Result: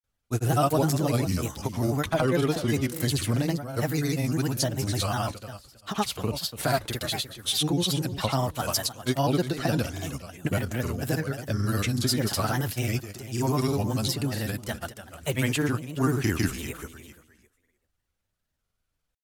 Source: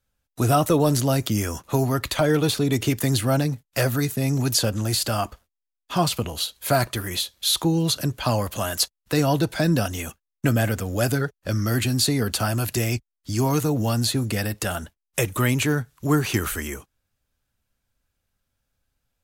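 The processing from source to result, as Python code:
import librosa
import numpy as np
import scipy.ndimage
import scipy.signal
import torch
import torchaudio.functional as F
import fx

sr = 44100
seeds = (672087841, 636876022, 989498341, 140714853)

y = fx.echo_feedback(x, sr, ms=343, feedback_pct=20, wet_db=-12)
y = fx.granulator(y, sr, seeds[0], grain_ms=100.0, per_s=20.0, spray_ms=100.0, spread_st=3)
y = y * 10.0 ** (-3.0 / 20.0)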